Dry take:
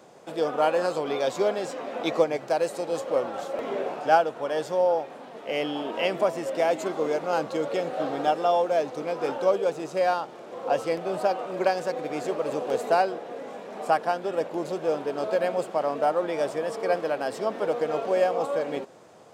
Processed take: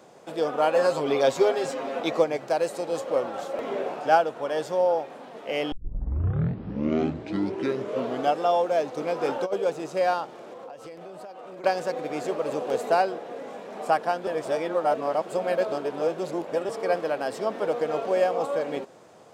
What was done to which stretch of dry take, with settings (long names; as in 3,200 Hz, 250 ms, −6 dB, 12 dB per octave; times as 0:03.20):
0:00.74–0:02.00: comb filter 7.4 ms, depth 91%
0:05.72: tape start 2.68 s
0:08.97–0:09.54: compressor whose output falls as the input rises −24 dBFS, ratio −0.5
0:10.41–0:11.64: downward compressor 20 to 1, threshold −37 dBFS
0:14.27–0:16.69: reverse